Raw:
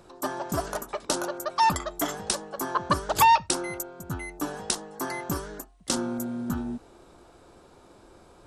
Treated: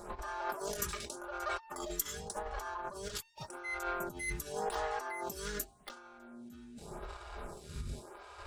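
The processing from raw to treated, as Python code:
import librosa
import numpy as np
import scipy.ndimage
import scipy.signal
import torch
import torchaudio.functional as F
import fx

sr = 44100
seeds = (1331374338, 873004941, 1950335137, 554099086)

y = fx.dmg_wind(x, sr, seeds[0], corner_hz=100.0, level_db=-41.0)
y = scipy.signal.sosfilt(scipy.signal.butter(2, 59.0, 'highpass', fs=sr, output='sos'), y)
y = fx.hpss(y, sr, part='percussive', gain_db=-14)
y = fx.leveller(y, sr, passes=1)
y = fx.over_compress(y, sr, threshold_db=-40.0, ratio=-1.0)
y = fx.peak_eq(y, sr, hz=180.0, db=-14.5, octaves=2.4)
y = y + 0.55 * np.pad(y, (int(4.9 * sr / 1000.0), 0))[:len(y)]
y = fx.stagger_phaser(y, sr, hz=0.87)
y = F.gain(torch.from_numpy(y), 4.5).numpy()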